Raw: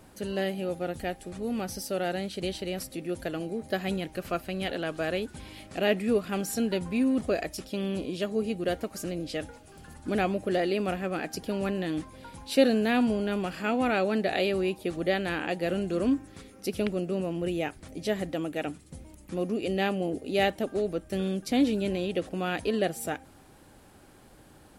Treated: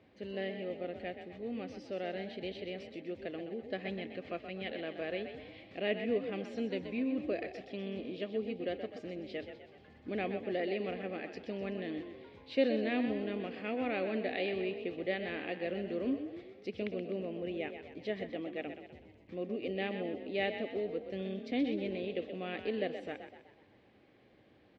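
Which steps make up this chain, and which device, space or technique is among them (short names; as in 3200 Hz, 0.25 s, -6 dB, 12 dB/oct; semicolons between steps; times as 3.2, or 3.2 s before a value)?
frequency-shifting delay pedal into a guitar cabinet (frequency-shifting echo 0.126 s, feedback 49%, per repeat +36 Hz, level -9 dB; speaker cabinet 99–3800 Hz, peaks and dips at 160 Hz -6 dB, 480 Hz +3 dB, 910 Hz -8 dB, 1400 Hz -9 dB, 2100 Hz +6 dB); gain -8.5 dB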